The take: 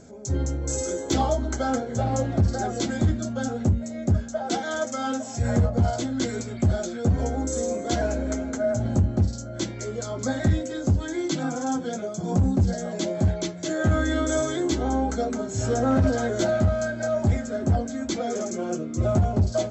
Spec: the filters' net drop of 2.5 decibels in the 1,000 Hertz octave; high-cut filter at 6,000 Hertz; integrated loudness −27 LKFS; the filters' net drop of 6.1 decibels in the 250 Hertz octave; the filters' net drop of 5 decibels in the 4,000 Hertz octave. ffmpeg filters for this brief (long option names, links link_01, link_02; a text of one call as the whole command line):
ffmpeg -i in.wav -af "lowpass=6000,equalizer=frequency=250:width_type=o:gain=-7.5,equalizer=frequency=1000:width_type=o:gain=-3,equalizer=frequency=4000:width_type=o:gain=-5,volume=1dB" out.wav